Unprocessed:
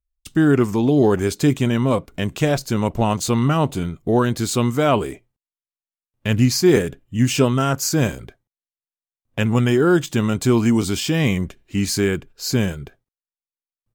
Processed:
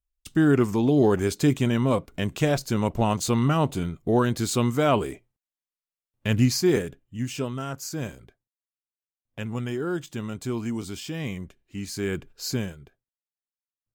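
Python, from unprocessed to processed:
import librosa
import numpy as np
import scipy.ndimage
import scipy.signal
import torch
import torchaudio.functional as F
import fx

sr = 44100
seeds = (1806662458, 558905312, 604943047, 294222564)

y = fx.gain(x, sr, db=fx.line((6.43, -4.0), (7.29, -13.0), (11.92, -13.0), (12.31, -1.5), (12.77, -14.0)))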